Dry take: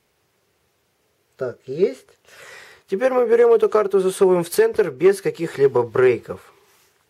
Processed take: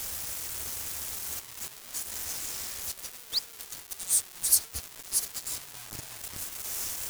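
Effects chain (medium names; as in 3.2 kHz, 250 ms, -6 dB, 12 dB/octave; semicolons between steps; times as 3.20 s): jump at every zero crossing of -34 dBFS; painted sound rise, 3.00–3.39 s, 260–5200 Hz -24 dBFS; inverse Chebyshev band-stop 190–2300 Hz, stop band 50 dB; bit crusher 7-bit; trim +7.5 dB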